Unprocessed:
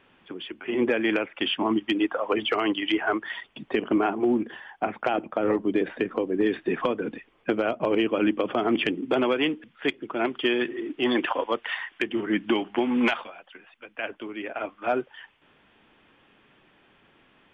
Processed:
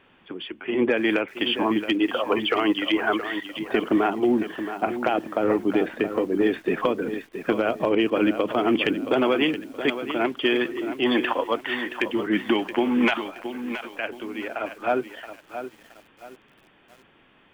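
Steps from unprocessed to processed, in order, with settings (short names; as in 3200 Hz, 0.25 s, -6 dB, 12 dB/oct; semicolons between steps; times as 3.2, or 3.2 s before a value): lo-fi delay 0.673 s, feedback 35%, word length 8-bit, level -10 dB; gain +2 dB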